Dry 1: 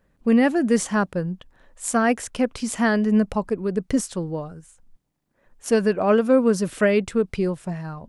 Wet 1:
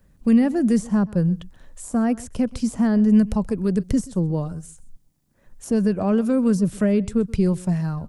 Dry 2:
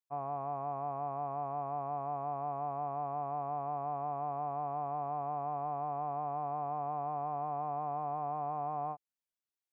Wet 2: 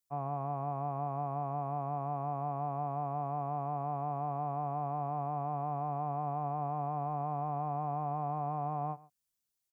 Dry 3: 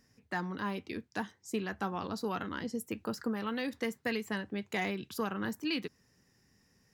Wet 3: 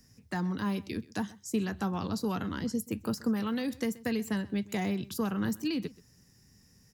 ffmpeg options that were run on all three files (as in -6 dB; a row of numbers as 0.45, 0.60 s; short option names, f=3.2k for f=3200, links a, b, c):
-filter_complex "[0:a]bass=f=250:g=10,treble=f=4k:g=10,acrossover=split=210|1100[a][b][c];[b]alimiter=limit=-16.5dB:level=0:latency=1:release=273[d];[c]acompressor=threshold=-39dB:ratio=6[e];[a][d][e]amix=inputs=3:normalize=0,aecho=1:1:129:0.0891"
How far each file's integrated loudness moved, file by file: +1.0, +1.0, +3.5 LU